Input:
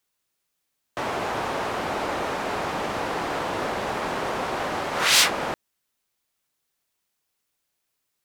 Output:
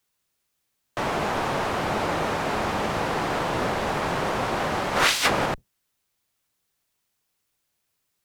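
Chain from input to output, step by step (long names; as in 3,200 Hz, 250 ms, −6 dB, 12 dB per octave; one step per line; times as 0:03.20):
sub-octave generator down 1 octave, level 0 dB
0:04.96–0:05.46: compressor whose output falls as the input rises −21 dBFS, ratio −0.5
level +1.5 dB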